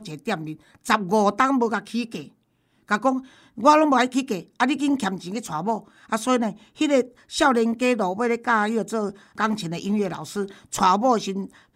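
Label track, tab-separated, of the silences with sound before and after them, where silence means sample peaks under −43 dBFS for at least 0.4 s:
2.280000	2.880000	silence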